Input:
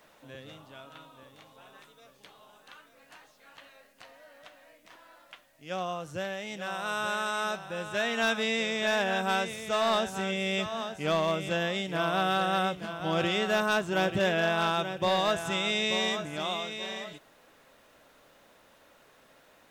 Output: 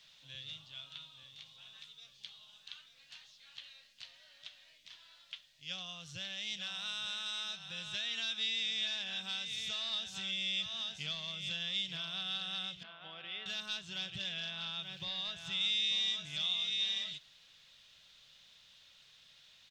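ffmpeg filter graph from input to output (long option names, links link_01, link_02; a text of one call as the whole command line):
ffmpeg -i in.wav -filter_complex "[0:a]asettb=1/sr,asplit=3[link_01][link_02][link_03];[link_01]atrim=end=12.834[link_04];[link_02]atrim=start=12.83:end=13.46,asetpts=PTS-STARTPTS,afade=type=in:duration=0.004:curve=qsin,afade=type=out:start_time=0.626:duration=0.004:curve=qsin,highpass=400,lowpass=2200,aemphasis=mode=reproduction:type=75kf[link_05];[link_03]atrim=start=13.456[link_06];[link_04][link_05]acrossfade=duration=0.004:curve1=hsin:curve2=qsin[link_07];[link_07][link_06]acrossfade=duration=0.004:curve1=qsin:curve2=hsin,asettb=1/sr,asplit=3[link_08][link_09][link_10];[link_08]atrim=end=14.504[link_11];[link_09]atrim=start=14.5:end=15.61,asetpts=PTS-STARTPTS,afade=type=in:duration=0.004:curve=qsin,afade=type=out:start_time=1.106:duration=0.004:curve=qsin,highshelf=frequency=4800:gain=-10,aeval=exprs='val(0)*gte(abs(val(0)),0.00316)':channel_layout=same[link_12];[link_10]atrim=start=15.606[link_13];[link_11][link_12]acrossfade=duration=0.004:curve1=hsin:curve2=qsin[link_14];[link_14][link_13]acrossfade=duration=0.004:curve1=qsin:curve2=hsin,equalizer=frequency=4800:width_type=o:width=1.6:gain=3.5,acompressor=threshold=-33dB:ratio=6,firequalizer=gain_entry='entry(150,0);entry(280,-17);entry(3400,13);entry(10000,-7)':delay=0.05:min_phase=1,volume=-6dB" out.wav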